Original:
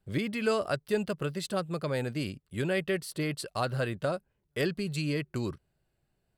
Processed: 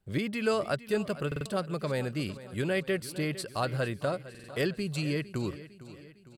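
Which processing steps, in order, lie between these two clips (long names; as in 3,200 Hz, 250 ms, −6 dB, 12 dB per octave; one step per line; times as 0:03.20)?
on a send: repeating echo 455 ms, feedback 53%, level −16 dB
on the sum: buffer that repeats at 0:01.27/0:04.30, samples 2,048, times 3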